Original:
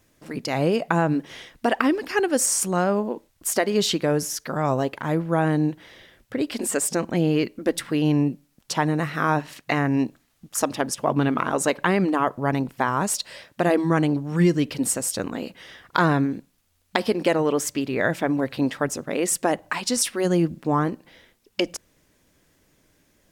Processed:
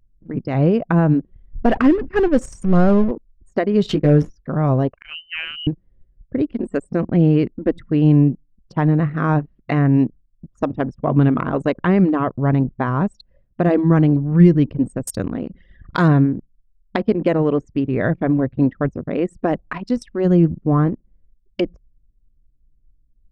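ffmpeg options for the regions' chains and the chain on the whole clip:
-filter_complex "[0:a]asettb=1/sr,asplit=3[s0][s1][s2];[s0]atrim=end=1.304[s3];[s1]atrim=start=1.3:end=3.11,asetpts=PTS-STARTPTS,afade=t=in:d=0.004:c=qsin,afade=t=out:st=1.806:d=0.004:c=qsin,aeval=exprs='val(0)+0.5*0.0596*sgn(val(0))':c=same,agate=range=0.0224:threshold=0.0891:ratio=3:release=100:detection=peak,lowshelf=f=71:g=6.5[s4];[s2]atrim=start=3.106[s5];[s3][s4]acrossfade=d=0.004:c1=hsin:c2=qsin[s6];[s6][s5]acrossfade=d=0.004:c1=qsin:c2=hsin,asettb=1/sr,asplit=3[s7][s8][s9];[s7]atrim=end=3.894[s10];[s8]atrim=start=3.89:end=4.3,asetpts=PTS-STARTPTS,afade=t=in:d=0.004:c=qsin,afade=t=out:st=0.406:d=0.004:c=qsin,equalizer=f=12000:w=0.8:g=13,adynamicsmooth=sensitivity=7:basefreq=1500,asplit=2[s11][s12];[s12]adelay=14,volume=0.708[s13];[s11][s13]amix=inputs=2:normalize=0,atrim=end_sample=18081[s14];[s9]atrim=start=4.296[s15];[s10][s14]acrossfade=d=0.004:c1=hsin:c2=qsin[s16];[s16][s15]acrossfade=d=0.004:c1=qsin:c2=hsin,asettb=1/sr,asplit=3[s17][s18][s19];[s17]atrim=end=4.914[s20];[s18]atrim=start=4.91:end=5.67,asetpts=PTS-STARTPTS,afade=t=in:d=0.004:c=qsin,afade=t=out:st=0.756:d=0.004:c=qsin,lowshelf=f=440:g=-6.5,lowpass=f=2700:t=q:w=0.5098,lowpass=f=2700:t=q:w=0.6013,lowpass=f=2700:t=q:w=0.9,lowpass=f=2700:t=q:w=2.563,afreqshift=-3200[s21];[s19]atrim=start=5.666[s22];[s20][s21]acrossfade=d=0.004:c1=hsin:c2=qsin[s23];[s23][s22]acrossfade=d=0.004:c1=qsin:c2=hsin,asettb=1/sr,asplit=3[s24][s25][s26];[s24]atrim=end=15.074[s27];[s25]atrim=start=15.07:end=16.08,asetpts=PTS-STARTPTS,afade=t=in:d=0.004:c=qsin,afade=t=out:st=1.006:d=0.004:c=qsin,aemphasis=mode=production:type=75fm,acompressor=mode=upward:threshold=0.0562:ratio=2.5:attack=3.2:release=140:knee=2.83:detection=peak[s28];[s26]atrim=start=16.076[s29];[s27][s28]acrossfade=d=0.004:c1=hsin:c2=qsin[s30];[s30][s29]acrossfade=d=0.004:c1=qsin:c2=hsin,aemphasis=mode=reproduction:type=riaa,bandreject=f=870:w=12,anlmdn=100"

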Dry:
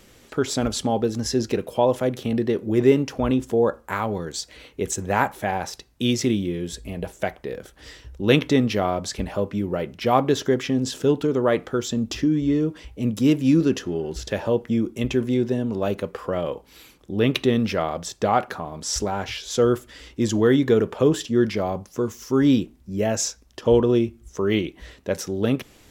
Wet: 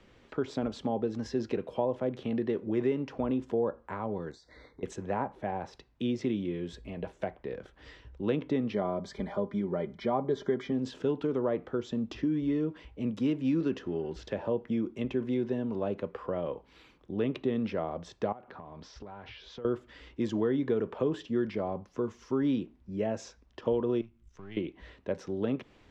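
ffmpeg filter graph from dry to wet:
-filter_complex "[0:a]asettb=1/sr,asplit=3[s0][s1][s2];[s0]atrim=end=4.314[s3];[s1]atrim=start=4.31:end=4.83,asetpts=PTS-STARTPTS,afade=t=in:d=0.004:c=qsin,afade=t=out:st=0.516:d=0.004:c=qsin,asuperstop=centerf=2800:order=12:qfactor=2,acompressor=threshold=0.0126:ratio=16:attack=3.2:release=140:knee=1:detection=peak,asplit=2[s4][s5];[s5]adelay=32,volume=0.251[s6];[s4][s6]amix=inputs=2:normalize=0,atrim=end_sample=22932[s7];[s2]atrim=start=4.826[s8];[s3][s7]acrossfade=d=0.004:c1=hsin:c2=qsin[s9];[s9][s8]acrossfade=d=0.004:c1=qsin:c2=hsin,asettb=1/sr,asplit=3[s10][s11][s12];[s10]atrim=end=8.734[s13];[s11]atrim=start=8.73:end=10.72,asetpts=PTS-STARTPTS,afade=t=in:d=0.004:c=qsin,afade=t=out:st=1.986:d=0.004:c=qsin,asuperstop=centerf=2700:order=12:qfactor=5.3,highshelf=f=7800:g=4.5,aecho=1:1:5:0.46,atrim=end_sample=87759[s14];[s12]atrim=start=10.716[s15];[s13][s14]acrossfade=d=0.004:c1=hsin:c2=qsin[s16];[s16][s15]acrossfade=d=0.004:c1=qsin:c2=hsin,asettb=1/sr,asplit=3[s17][s18][s19];[s17]atrim=end=18.324[s20];[s18]atrim=start=18.32:end=19.65,asetpts=PTS-STARTPTS,afade=t=in:d=0.004:c=qsin,afade=t=out:st=1.326:d=0.004:c=qsin,lowpass=f=5300:w=0.5412,lowpass=f=5300:w=1.3066,acompressor=threshold=0.02:ratio=8:attack=3.2:release=140:knee=1:detection=peak[s21];[s19]atrim=start=19.646[s22];[s20][s21]acrossfade=d=0.004:c1=hsin:c2=qsin[s23];[s23][s22]acrossfade=d=0.004:c1=qsin:c2=hsin,asettb=1/sr,asplit=3[s24][s25][s26];[s24]atrim=end=24.014[s27];[s25]atrim=start=24.01:end=24.57,asetpts=PTS-STARTPTS,afade=t=in:d=0.004:c=qsin,afade=t=out:st=0.556:d=0.004:c=qsin,aeval=exprs='if(lt(val(0),0),0.447*val(0),val(0))':c=same,equalizer=f=560:t=o:w=1.9:g=-12.5,acompressor=threshold=0.00355:ratio=1.5:attack=3.2:release=140:knee=1:detection=peak[s28];[s26]atrim=start=24.566[s29];[s27][s28]acrossfade=d=0.004:c1=hsin:c2=qsin[s30];[s30][s29]acrossfade=d=0.004:c1=qsin:c2=hsin,lowpass=3100,equalizer=f=1000:w=6.5:g=3.5,acrossover=split=150|790[s31][s32][s33];[s31]acompressor=threshold=0.00891:ratio=4[s34];[s32]acompressor=threshold=0.112:ratio=4[s35];[s33]acompressor=threshold=0.0126:ratio=4[s36];[s34][s35][s36]amix=inputs=3:normalize=0,volume=0.473"

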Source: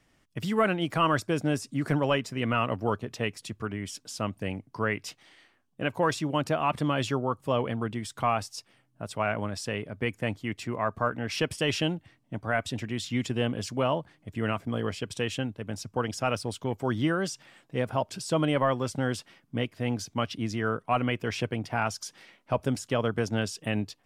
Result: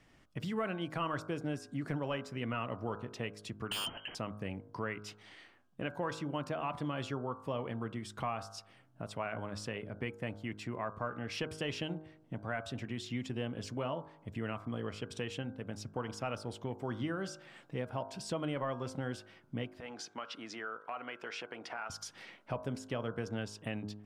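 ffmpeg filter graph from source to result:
-filter_complex "[0:a]asettb=1/sr,asplit=3[s0][s1][s2];[s0]atrim=end=3.714[s3];[s1]atrim=start=3.71:end=4.15,asetpts=PTS-STARTPTS,afade=t=in:d=0.004:c=qsin,afade=t=out:st=0.436:d=0.004:c=qsin,lowpass=f=2700:t=q:w=0.5098,lowpass=f=2700:t=q:w=0.6013,lowpass=f=2700:t=q:w=0.9,lowpass=f=2700:t=q:w=2.563,afreqshift=-3200,aeval=exprs='0.0668*sin(PI/2*5.01*val(0)/0.0668)':c=same[s4];[s2]atrim=start=4.146[s5];[s3][s4]acrossfade=d=0.004:c1=hsin:c2=qsin[s6];[s6][s5]acrossfade=d=0.004:c1=qsin:c2=hsin,asettb=1/sr,asplit=3[s7][s8][s9];[s7]atrim=end=19.804[s10];[s8]atrim=start=19.8:end=21.9,asetpts=PTS-STARTPTS,afade=t=in:d=0.004:c=qsin,afade=t=out:st=2.096:d=0.004:c=qsin,equalizer=f=1400:w=2.6:g=6,acompressor=threshold=0.02:ratio=2.5:attack=3.2:release=140:knee=1:detection=peak,highpass=440,lowpass=8000[s11];[s9]atrim=start=21.896[s12];[s10][s11]acrossfade=d=0.004:c1=hsin:c2=qsin[s13];[s13][s12]acrossfade=d=0.004:c1=qsin:c2=hsin,highshelf=f=6400:g=-9.5,bandreject=f=52.24:t=h:w=4,bandreject=f=104.48:t=h:w=4,bandreject=f=156.72:t=h:w=4,bandreject=f=208.96:t=h:w=4,bandreject=f=261.2:t=h:w=4,bandreject=f=313.44:t=h:w=4,bandreject=f=365.68:t=h:w=4,bandreject=f=417.92:t=h:w=4,bandreject=f=470.16:t=h:w=4,bandreject=f=522.4:t=h:w=4,bandreject=f=574.64:t=h:w=4,bandreject=f=626.88:t=h:w=4,bandreject=f=679.12:t=h:w=4,bandreject=f=731.36:t=h:w=4,bandreject=f=783.6:t=h:w=4,bandreject=f=835.84:t=h:w=4,bandreject=f=888.08:t=h:w=4,bandreject=f=940.32:t=h:w=4,bandreject=f=992.56:t=h:w=4,bandreject=f=1044.8:t=h:w=4,bandreject=f=1097.04:t=h:w=4,bandreject=f=1149.28:t=h:w=4,bandreject=f=1201.52:t=h:w=4,bandreject=f=1253.76:t=h:w=4,bandreject=f=1306:t=h:w=4,bandreject=f=1358.24:t=h:w=4,bandreject=f=1410.48:t=h:w=4,bandreject=f=1462.72:t=h:w=4,bandreject=f=1514.96:t=h:w=4,bandreject=f=1567.2:t=h:w=4,bandreject=f=1619.44:t=h:w=4,acompressor=threshold=0.00447:ratio=2,volume=1.41"

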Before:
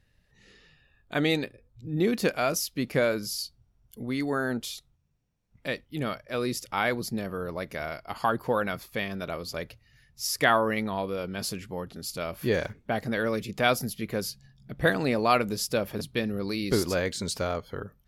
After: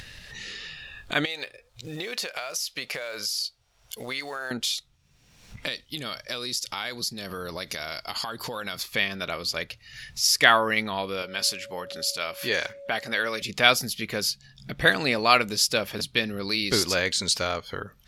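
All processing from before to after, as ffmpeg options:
-filter_complex "[0:a]asettb=1/sr,asplit=3[s0][s1][s2];[s0]atrim=end=1.254[s3];[s1]atrim=start=1.25:end=4.51,asetpts=PTS-STARTPTS,afade=t=in:d=0.004:c=qsin,afade=t=out:st=3.256:d=0.004:c=qsin,lowshelf=f=380:t=q:w=1.5:g=-11,acompressor=threshold=0.02:ratio=16:attack=3.2:release=140:knee=1:detection=peak,acrusher=bits=7:mode=log:mix=0:aa=0.000001[s4];[s2]atrim=start=4.506[s5];[s3][s4]acrossfade=d=0.004:c1=hsin:c2=qsin[s6];[s6][s5]acrossfade=d=0.004:c1=qsin:c2=hsin,asettb=1/sr,asplit=3[s7][s8][s9];[s7]atrim=end=5.684[s10];[s8]atrim=start=5.68:end=8.83,asetpts=PTS-STARTPTS,afade=t=in:d=0.004:c=qsin,afade=t=out:st=3.146:d=0.004:c=qsin,highshelf=f=3100:t=q:w=1.5:g=6,acompressor=threshold=0.0178:ratio=4:attack=3.2:release=140:knee=1:detection=peak[s11];[s9]atrim=start=8.826[s12];[s10][s11]acrossfade=d=0.004:c1=hsin:c2=qsin[s13];[s13][s12]acrossfade=d=0.004:c1=qsin:c2=hsin,asettb=1/sr,asplit=3[s14][s15][s16];[s14]atrim=end=11.224[s17];[s15]atrim=start=11.22:end=13.42,asetpts=PTS-STARTPTS,afade=t=in:d=0.004:c=qsin,afade=t=out:st=2.196:d=0.004:c=qsin,lowshelf=f=290:g=-11.5,aeval=exprs='val(0)+0.00708*sin(2*PI*560*n/s)':c=same[s18];[s16]atrim=start=13.416[s19];[s17][s18]acrossfade=d=0.004:c1=hsin:c2=qsin[s20];[s20][s19]acrossfade=d=0.004:c1=qsin:c2=hsin,equalizer=f=4000:w=0.32:g=14,acompressor=mode=upward:threshold=0.0631:ratio=2.5,volume=0.708"

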